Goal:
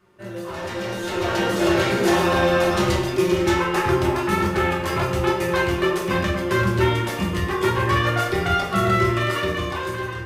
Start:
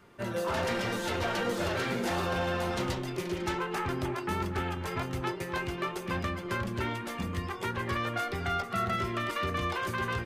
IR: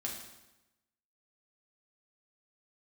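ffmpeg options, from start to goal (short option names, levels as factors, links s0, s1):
-filter_complex "[0:a]dynaudnorm=f=520:g=5:m=4.73[s0];[1:a]atrim=start_sample=2205,asetrate=70560,aresample=44100[s1];[s0][s1]afir=irnorm=-1:irlink=0,volume=1.19"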